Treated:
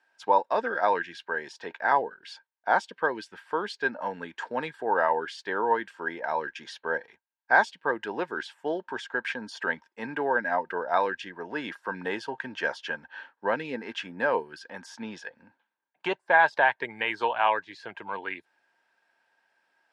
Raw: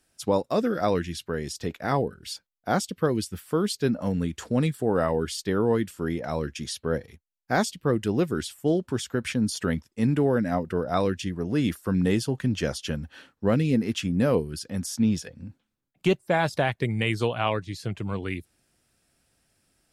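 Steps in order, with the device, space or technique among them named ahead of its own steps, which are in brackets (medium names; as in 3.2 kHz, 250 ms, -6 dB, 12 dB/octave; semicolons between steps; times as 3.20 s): tin-can telephone (band-pass 570–3000 Hz; small resonant body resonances 920/1600 Hz, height 15 dB, ringing for 30 ms)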